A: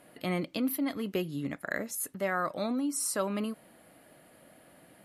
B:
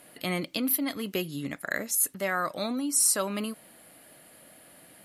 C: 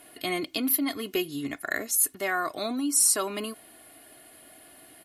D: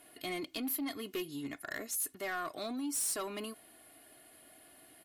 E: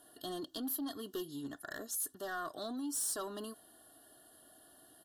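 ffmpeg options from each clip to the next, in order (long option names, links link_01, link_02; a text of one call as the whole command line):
ffmpeg -i in.wav -af "highshelf=frequency=2400:gain=10.5" out.wav
ffmpeg -i in.wav -af "aecho=1:1:2.8:0.67" out.wav
ffmpeg -i in.wav -af "asoftclip=type=tanh:threshold=-24dB,volume=-7dB" out.wav
ffmpeg -i in.wav -af "asuperstop=centerf=2300:order=8:qfactor=2,volume=-2dB" out.wav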